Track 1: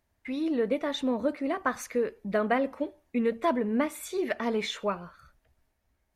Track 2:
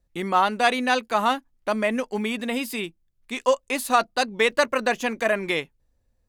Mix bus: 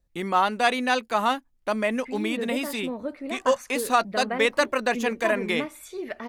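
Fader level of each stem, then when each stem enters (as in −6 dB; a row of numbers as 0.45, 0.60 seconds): −4.0, −1.5 decibels; 1.80, 0.00 seconds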